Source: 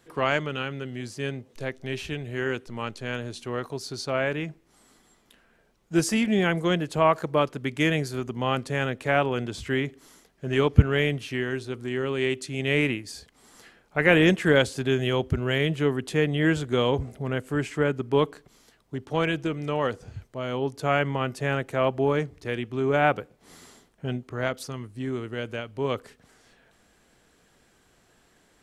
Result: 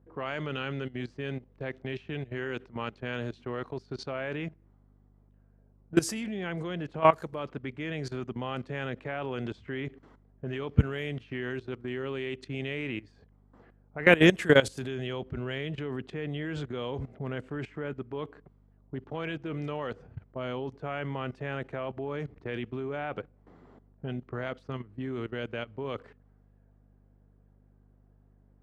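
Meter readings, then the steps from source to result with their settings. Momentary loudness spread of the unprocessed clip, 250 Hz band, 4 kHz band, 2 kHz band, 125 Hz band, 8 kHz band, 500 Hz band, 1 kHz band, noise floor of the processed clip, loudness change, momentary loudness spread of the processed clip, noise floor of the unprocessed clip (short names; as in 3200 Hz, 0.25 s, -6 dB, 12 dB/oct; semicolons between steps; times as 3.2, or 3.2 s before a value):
12 LU, -5.5 dB, -6.5 dB, -5.0 dB, -6.5 dB, -7.0 dB, -6.0 dB, -6.0 dB, -61 dBFS, -6.0 dB, 14 LU, -63 dBFS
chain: bell 78 Hz -3.5 dB 0.78 oct; level quantiser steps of 18 dB; low-pass opened by the level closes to 750 Hz, open at -27.5 dBFS; hum 50 Hz, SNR 27 dB; HPF 45 Hz; gain +2 dB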